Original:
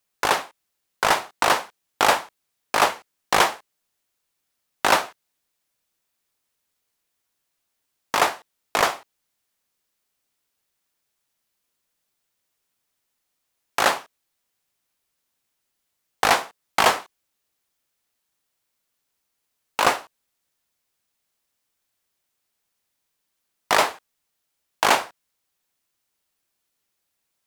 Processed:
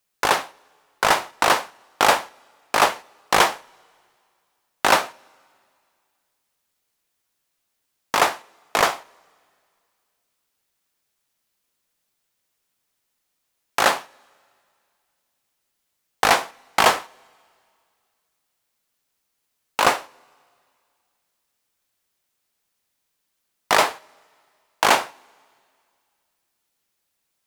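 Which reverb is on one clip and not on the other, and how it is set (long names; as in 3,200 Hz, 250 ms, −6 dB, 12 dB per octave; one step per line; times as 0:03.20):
coupled-rooms reverb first 0.42 s, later 2.3 s, from −16 dB, DRR 20 dB
level +1.5 dB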